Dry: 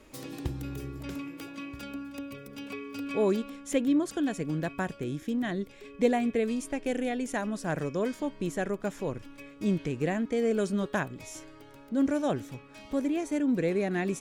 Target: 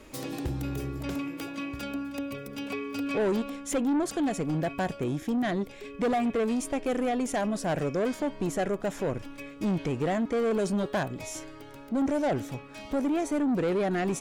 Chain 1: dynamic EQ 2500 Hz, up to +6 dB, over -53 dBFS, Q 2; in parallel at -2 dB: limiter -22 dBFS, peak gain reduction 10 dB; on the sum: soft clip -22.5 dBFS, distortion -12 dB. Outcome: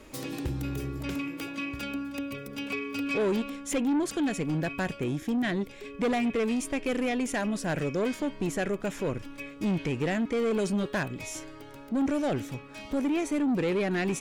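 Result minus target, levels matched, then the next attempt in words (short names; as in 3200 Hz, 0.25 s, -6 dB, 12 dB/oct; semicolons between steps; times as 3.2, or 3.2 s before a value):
2000 Hz band +3.5 dB
dynamic EQ 700 Hz, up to +6 dB, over -53 dBFS, Q 2; in parallel at -2 dB: limiter -22 dBFS, peak gain reduction 11 dB; on the sum: soft clip -22.5 dBFS, distortion -11 dB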